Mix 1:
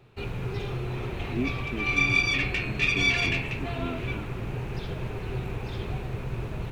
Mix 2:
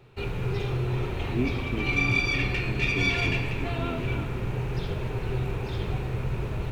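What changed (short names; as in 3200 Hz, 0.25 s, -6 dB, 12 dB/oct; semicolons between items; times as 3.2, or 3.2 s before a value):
second sound -7.5 dB; reverb: on, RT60 1.9 s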